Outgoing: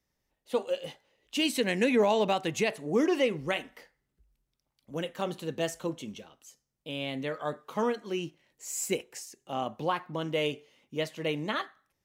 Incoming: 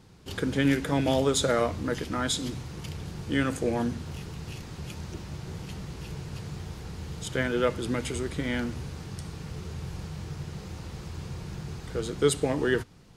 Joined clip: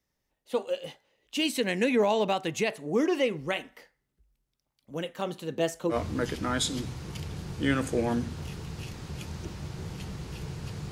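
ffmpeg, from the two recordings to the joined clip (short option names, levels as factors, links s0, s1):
-filter_complex "[0:a]asettb=1/sr,asplit=3[s0][s1][s2];[s0]atrim=end=5.524[s3];[s1]atrim=start=5.52:end=5.97,asetpts=PTS-STARTPTS,afade=t=in:d=0.004:c=qsin,afade=t=out:st=0.446:d=0.004:c=qsin,equalizer=f=380:w=0.55:g=4.5[s4];[s2]atrim=start=5.966[s5];[s3][s4]acrossfade=d=0.004:c1=hsin:c2=qsin[s6];[s6][s5]acrossfade=d=0.004:c1=qsin:c2=hsin,apad=whole_dur=10.91,atrim=end=10.91,atrim=end=5.97,asetpts=PTS-STARTPTS[s7];[1:a]atrim=start=1.58:end=6.6,asetpts=PTS-STARTPTS[s8];[s7][s8]acrossfade=d=0.08:c1=tri:c2=tri"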